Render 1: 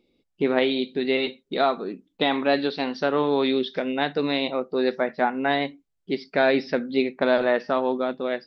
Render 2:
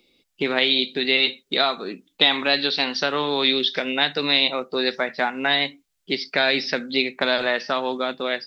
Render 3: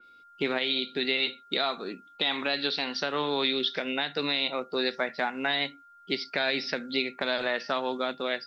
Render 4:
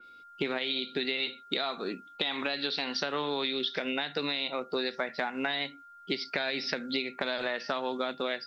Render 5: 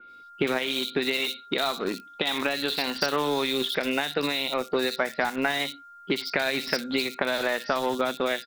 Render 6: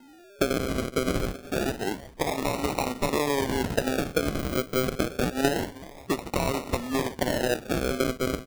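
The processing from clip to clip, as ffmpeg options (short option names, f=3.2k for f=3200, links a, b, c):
-filter_complex "[0:a]tiltshelf=f=1.1k:g=-7.5,acrossover=split=170|3000[a][b][c];[b]acompressor=threshold=-31dB:ratio=2[d];[a][d][c]amix=inputs=3:normalize=0,volume=7dB"
-af "alimiter=limit=-9dB:level=0:latency=1:release=143,aeval=exprs='val(0)+0.00447*sin(2*PI*1400*n/s)':c=same,adynamicequalizer=threshold=0.0316:dfrequency=3500:dqfactor=0.7:tfrequency=3500:tqfactor=0.7:attack=5:release=100:ratio=0.375:range=1.5:mode=cutabove:tftype=highshelf,volume=-5dB"
-af "acompressor=threshold=-30dB:ratio=6,volume=2.5dB"
-filter_complex "[0:a]asplit=2[a][b];[b]acrusher=bits=4:mix=0:aa=0.000001,volume=-9.5dB[c];[a][c]amix=inputs=2:normalize=0,acrossover=split=3500[d][e];[e]adelay=60[f];[d][f]amix=inputs=2:normalize=0,volume=4dB"
-af "adynamicsmooth=sensitivity=7:basefreq=1.4k,aecho=1:1:374|748|1122:0.141|0.041|0.0119,acrusher=samples=38:mix=1:aa=0.000001:lfo=1:lforange=22.8:lforate=0.27"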